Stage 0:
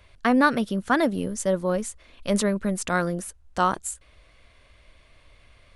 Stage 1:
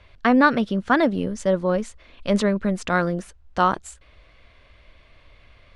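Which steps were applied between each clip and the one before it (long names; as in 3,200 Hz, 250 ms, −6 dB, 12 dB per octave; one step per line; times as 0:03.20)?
low-pass filter 4,500 Hz 12 dB per octave
level +3 dB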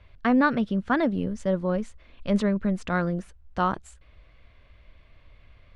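bass and treble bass +6 dB, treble −5 dB
level −6 dB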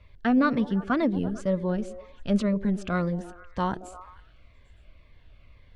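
echo through a band-pass that steps 114 ms, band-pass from 340 Hz, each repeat 0.7 octaves, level −10 dB
phaser whose notches keep moving one way falling 2 Hz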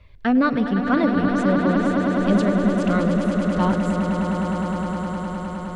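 echo that builds up and dies away 103 ms, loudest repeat 8, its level −9.5 dB
level +3.5 dB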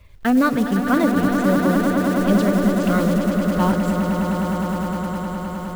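one scale factor per block 5 bits
level +1.5 dB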